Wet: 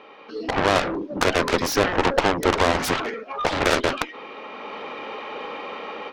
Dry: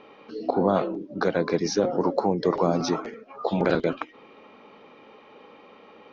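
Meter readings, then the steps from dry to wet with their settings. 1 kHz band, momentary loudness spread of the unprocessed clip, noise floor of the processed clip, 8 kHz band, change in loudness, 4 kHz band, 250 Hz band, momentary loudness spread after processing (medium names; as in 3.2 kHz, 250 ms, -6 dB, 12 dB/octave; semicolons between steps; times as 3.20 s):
+6.0 dB, 10 LU, -44 dBFS, no reading, +2.5 dB, +11.0 dB, -0.5 dB, 14 LU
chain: overdrive pedal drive 17 dB, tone 4.2 kHz, clips at -9.5 dBFS; level rider gain up to 13.5 dB; Chebyshev shaper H 2 -11 dB, 3 -9 dB, 4 -30 dB, 7 -18 dB, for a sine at -1 dBFS; trim -4.5 dB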